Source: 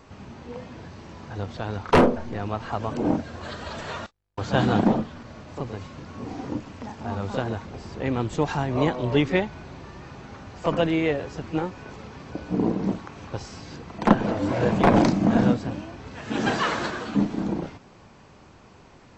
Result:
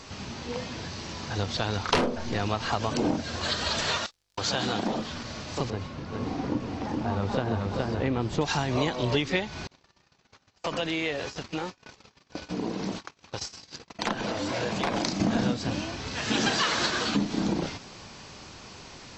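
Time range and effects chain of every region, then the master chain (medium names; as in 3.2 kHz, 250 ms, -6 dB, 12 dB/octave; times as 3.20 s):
3.97–5.08 s: tone controls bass -6 dB, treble +1 dB + compression 2:1, threshold -33 dBFS + crackle 41 per s -61 dBFS
5.70–8.41 s: low-pass 1.1 kHz 6 dB/octave + delay 418 ms -3.5 dB
9.67–15.20 s: bass shelf 320 Hz -6 dB + compression 2.5:1, threshold -33 dBFS + gate -41 dBFS, range -34 dB
whole clip: peaking EQ 5 kHz +14 dB 2 oct; compression 6:1, threshold -25 dBFS; trim +2.5 dB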